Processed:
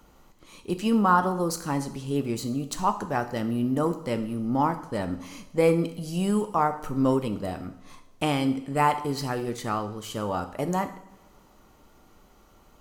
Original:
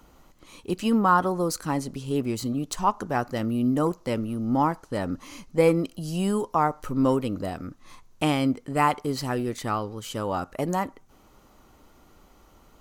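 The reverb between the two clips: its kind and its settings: two-slope reverb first 0.64 s, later 2 s, DRR 8 dB; trim -1.5 dB

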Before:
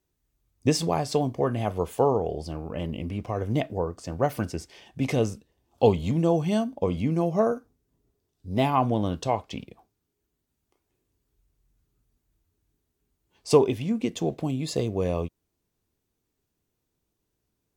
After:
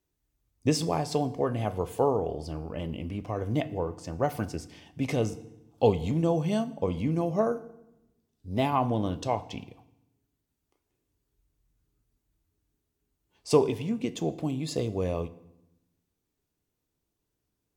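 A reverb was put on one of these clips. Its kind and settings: FDN reverb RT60 0.87 s, low-frequency decay 1.45×, high-frequency decay 0.85×, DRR 13.5 dB; trim -3 dB

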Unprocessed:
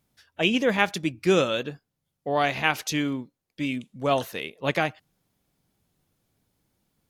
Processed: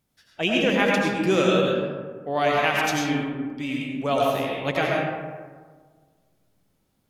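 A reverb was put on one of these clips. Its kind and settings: algorithmic reverb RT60 1.6 s, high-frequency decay 0.4×, pre-delay 55 ms, DRR -3 dB; trim -2 dB

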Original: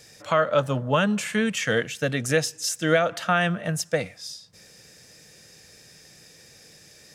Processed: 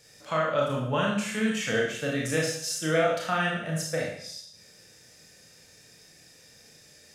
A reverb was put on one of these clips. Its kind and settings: Schroeder reverb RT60 0.65 s, combs from 25 ms, DRR -3 dB; trim -8 dB

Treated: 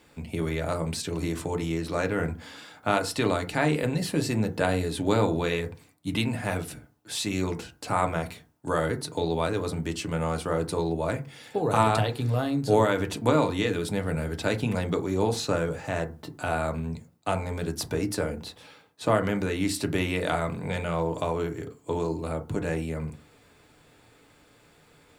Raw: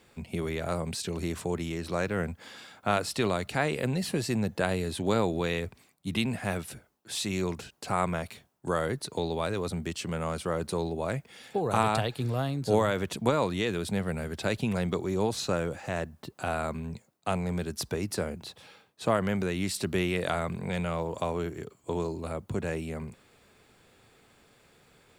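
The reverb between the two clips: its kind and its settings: FDN reverb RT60 0.32 s, low-frequency decay 1.25×, high-frequency decay 0.4×, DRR 5 dB; trim +1.5 dB

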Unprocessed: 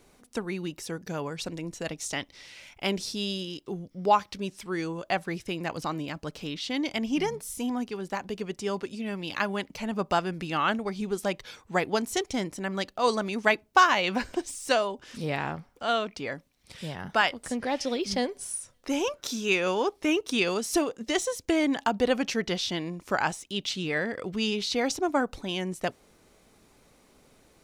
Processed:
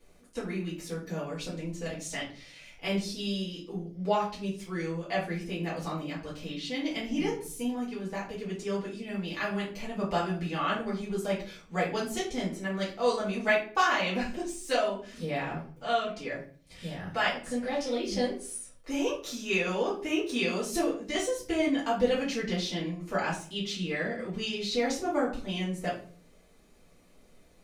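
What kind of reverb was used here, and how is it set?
simulated room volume 32 m³, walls mixed, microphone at 1.7 m; trim -13 dB

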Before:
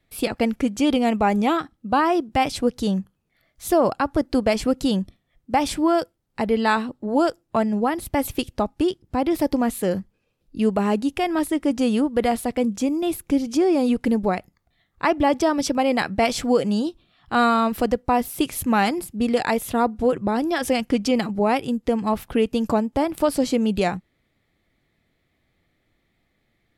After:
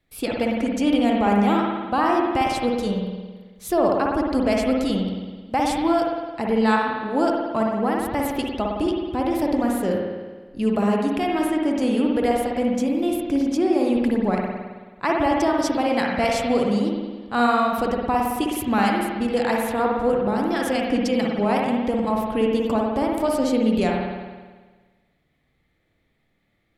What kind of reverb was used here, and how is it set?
spring tank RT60 1.4 s, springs 54 ms, chirp 45 ms, DRR -1 dB; trim -3.5 dB

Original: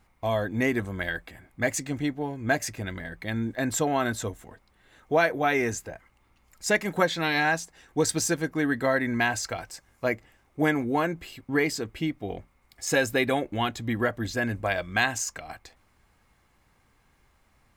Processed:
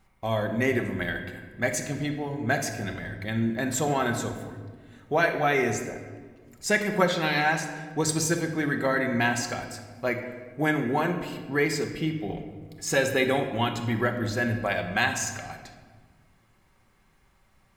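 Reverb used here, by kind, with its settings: simulated room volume 1500 m³, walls mixed, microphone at 1.1 m; trim -1 dB

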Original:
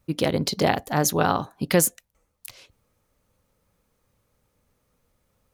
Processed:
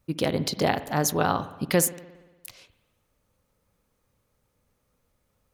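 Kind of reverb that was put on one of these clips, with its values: spring tank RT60 1.2 s, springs 58 ms, chirp 40 ms, DRR 14.5 dB; trim -2.5 dB

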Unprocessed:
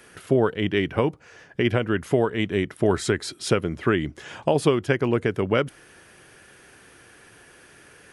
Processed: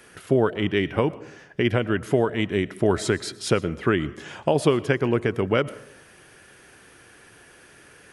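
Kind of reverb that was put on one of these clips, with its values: algorithmic reverb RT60 0.71 s, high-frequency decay 0.4×, pre-delay 75 ms, DRR 18 dB

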